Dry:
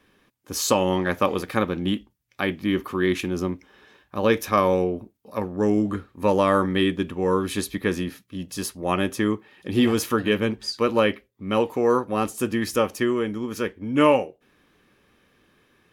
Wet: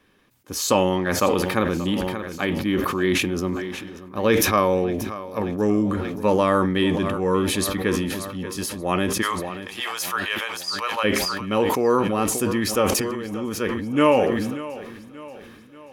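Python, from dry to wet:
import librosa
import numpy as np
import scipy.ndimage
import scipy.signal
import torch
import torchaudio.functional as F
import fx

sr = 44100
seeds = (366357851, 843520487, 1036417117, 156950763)

y = fx.highpass(x, sr, hz=760.0, slope=24, at=(9.21, 11.03), fade=0.02)
y = fx.over_compress(y, sr, threshold_db=-34.0, ratio=-1.0, at=(12.92, 13.37))
y = fx.echo_feedback(y, sr, ms=583, feedback_pct=51, wet_db=-16.5)
y = fx.sustainer(y, sr, db_per_s=31.0)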